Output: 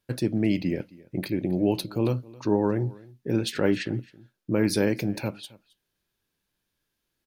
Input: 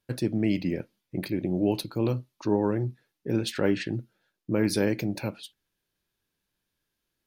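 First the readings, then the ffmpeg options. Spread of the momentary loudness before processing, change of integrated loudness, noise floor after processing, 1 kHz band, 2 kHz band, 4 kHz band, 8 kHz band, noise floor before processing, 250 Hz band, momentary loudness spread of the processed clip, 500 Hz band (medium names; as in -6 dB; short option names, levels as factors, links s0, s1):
11 LU, +1.5 dB, -81 dBFS, +1.5 dB, +1.5 dB, +1.5 dB, +1.5 dB, -82 dBFS, +1.5 dB, 11 LU, +1.5 dB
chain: -af "aecho=1:1:268:0.075,volume=1.19"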